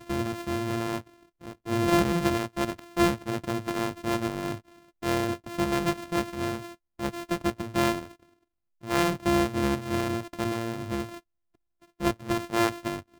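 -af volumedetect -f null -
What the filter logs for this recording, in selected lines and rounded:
mean_volume: -29.2 dB
max_volume: -8.6 dB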